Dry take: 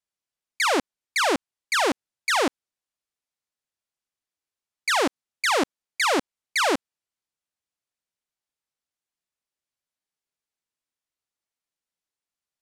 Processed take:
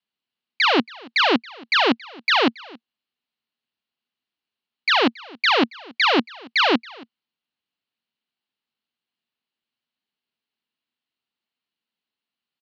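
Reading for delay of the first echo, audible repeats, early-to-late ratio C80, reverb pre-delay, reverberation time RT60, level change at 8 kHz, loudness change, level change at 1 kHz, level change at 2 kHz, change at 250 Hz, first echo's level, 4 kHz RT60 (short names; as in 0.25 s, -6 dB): 0.276 s, 1, none, none, none, -15.0 dB, +4.5 dB, +3.0 dB, +4.5 dB, +6.5 dB, -23.0 dB, none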